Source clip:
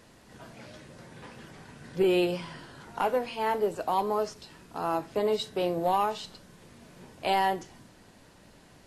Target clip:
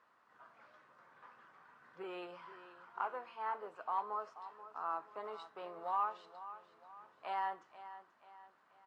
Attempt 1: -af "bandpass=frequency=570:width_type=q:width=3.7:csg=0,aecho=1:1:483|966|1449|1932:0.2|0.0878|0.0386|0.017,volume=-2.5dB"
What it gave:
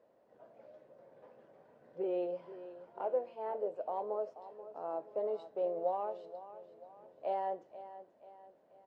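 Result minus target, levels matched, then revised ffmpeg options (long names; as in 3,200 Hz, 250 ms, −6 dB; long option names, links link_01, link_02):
500 Hz band +9.5 dB
-af "bandpass=frequency=1200:width_type=q:width=3.7:csg=0,aecho=1:1:483|966|1449|1932:0.2|0.0878|0.0386|0.017,volume=-2.5dB"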